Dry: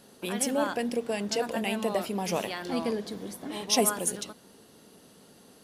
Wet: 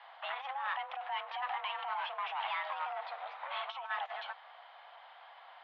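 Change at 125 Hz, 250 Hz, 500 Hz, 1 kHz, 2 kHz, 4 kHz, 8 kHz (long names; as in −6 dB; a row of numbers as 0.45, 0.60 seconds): below −40 dB, below −40 dB, −17.0 dB, −1.0 dB, −2.0 dB, −8.5 dB, below −40 dB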